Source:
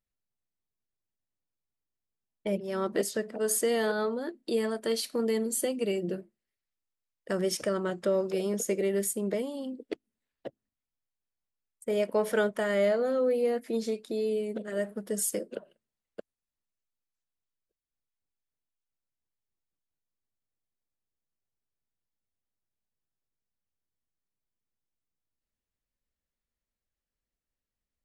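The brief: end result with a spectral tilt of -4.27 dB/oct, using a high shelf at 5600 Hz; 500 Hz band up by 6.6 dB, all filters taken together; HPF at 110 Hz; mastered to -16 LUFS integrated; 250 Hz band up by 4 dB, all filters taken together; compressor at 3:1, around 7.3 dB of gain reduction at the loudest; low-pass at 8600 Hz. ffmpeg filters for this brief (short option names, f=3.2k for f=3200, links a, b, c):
-af "highpass=110,lowpass=8.6k,equalizer=f=250:t=o:g=3.5,equalizer=f=500:t=o:g=7,highshelf=f=5.6k:g=-5.5,acompressor=threshold=-26dB:ratio=3,volume=14dB"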